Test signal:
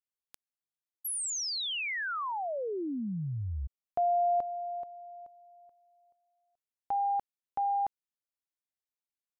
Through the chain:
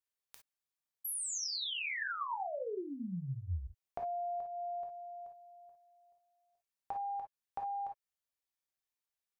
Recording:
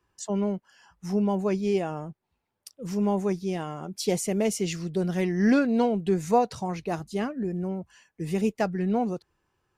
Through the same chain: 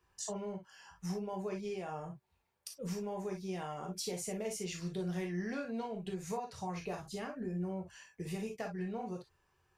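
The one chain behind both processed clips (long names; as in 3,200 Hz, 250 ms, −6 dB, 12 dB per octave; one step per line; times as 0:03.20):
parametric band 260 Hz −8 dB 0.89 octaves
downward compressor 6 to 1, threshold −38 dBFS
reverb whose tail is shaped and stops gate 80 ms flat, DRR 1 dB
level −1.5 dB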